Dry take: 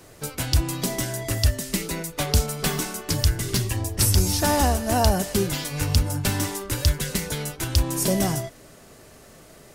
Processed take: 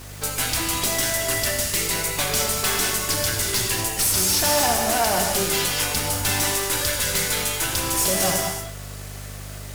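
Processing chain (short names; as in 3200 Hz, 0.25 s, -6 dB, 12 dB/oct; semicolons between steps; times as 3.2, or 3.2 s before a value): HPF 920 Hz 6 dB/oct; hum 50 Hz, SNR 18 dB; in parallel at -5 dB: requantised 8-bit, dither triangular; on the sum: tube stage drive 26 dB, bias 0.55; non-linear reverb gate 0.26 s flat, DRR 1.5 dB; gain +7 dB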